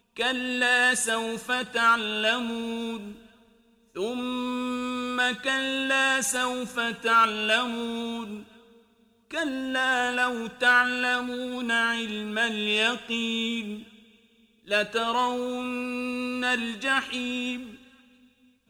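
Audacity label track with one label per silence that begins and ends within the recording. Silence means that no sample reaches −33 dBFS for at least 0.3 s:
3.110000	3.960000	silence
8.380000	9.310000	silence
13.760000	14.700000	silence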